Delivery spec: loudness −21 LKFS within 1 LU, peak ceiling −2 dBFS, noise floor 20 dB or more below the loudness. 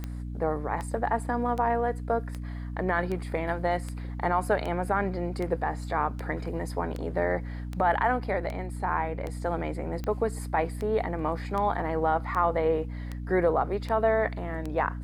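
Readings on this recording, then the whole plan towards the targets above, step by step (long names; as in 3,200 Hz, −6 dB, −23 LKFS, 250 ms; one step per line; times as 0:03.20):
number of clicks 20; mains hum 60 Hz; hum harmonics up to 300 Hz; level of the hum −33 dBFS; integrated loudness −29.0 LKFS; sample peak −13.0 dBFS; target loudness −21.0 LKFS
→ click removal
hum removal 60 Hz, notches 5
level +8 dB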